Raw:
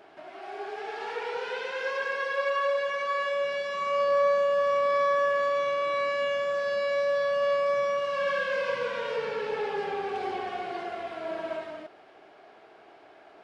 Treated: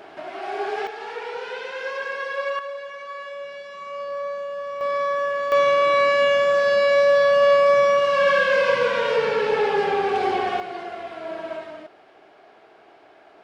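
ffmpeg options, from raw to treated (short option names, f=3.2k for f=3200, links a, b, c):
-af "asetnsamples=n=441:p=0,asendcmd='0.87 volume volume 1.5dB;2.59 volume volume -6dB;4.81 volume volume 1dB;5.52 volume volume 10dB;10.6 volume volume 2dB',volume=10dB"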